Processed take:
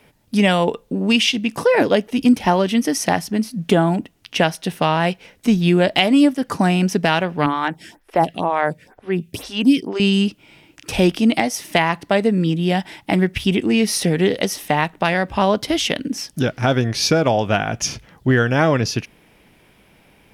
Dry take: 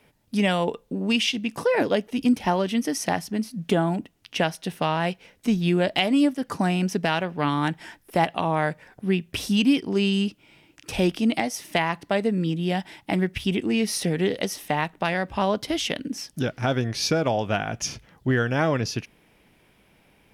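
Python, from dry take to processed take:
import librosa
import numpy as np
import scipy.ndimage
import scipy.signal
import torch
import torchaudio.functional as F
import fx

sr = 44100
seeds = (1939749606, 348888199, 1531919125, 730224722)

y = fx.stagger_phaser(x, sr, hz=2.1, at=(7.46, 10.0))
y = y * 10.0 ** (6.5 / 20.0)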